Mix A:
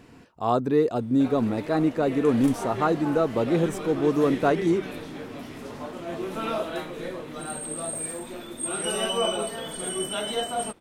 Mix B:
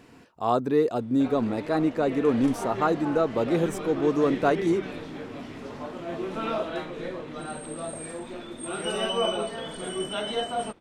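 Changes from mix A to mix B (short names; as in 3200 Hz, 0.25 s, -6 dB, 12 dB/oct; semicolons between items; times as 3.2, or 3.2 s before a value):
speech: add low shelf 170 Hz -6 dB; background: add air absorption 77 m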